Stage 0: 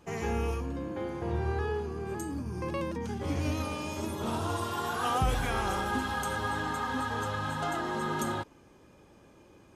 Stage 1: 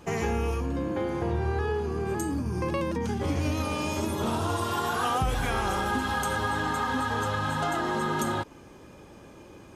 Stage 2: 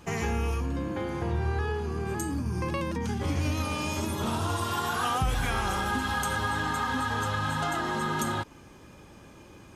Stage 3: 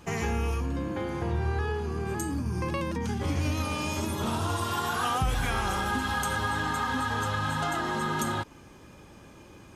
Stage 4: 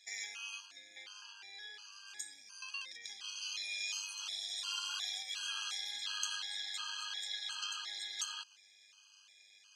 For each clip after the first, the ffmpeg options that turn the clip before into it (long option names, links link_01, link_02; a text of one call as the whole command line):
ffmpeg -i in.wav -af "acompressor=threshold=-35dB:ratio=2.5,volume=8.5dB" out.wav
ffmpeg -i in.wav -af "equalizer=frequency=470:width_type=o:width=1.8:gain=-5.5,volume=1dB" out.wav
ffmpeg -i in.wav -af anull out.wav
ffmpeg -i in.wav -af "asuperpass=centerf=4400:order=4:qfactor=1.2,tremolo=f=100:d=0.462,afftfilt=real='re*gt(sin(2*PI*1.4*pts/sr)*(1-2*mod(floor(b*sr/1024/820),2)),0)':imag='im*gt(sin(2*PI*1.4*pts/sr)*(1-2*mod(floor(b*sr/1024/820),2)),0)':win_size=1024:overlap=0.75,volume=7dB" out.wav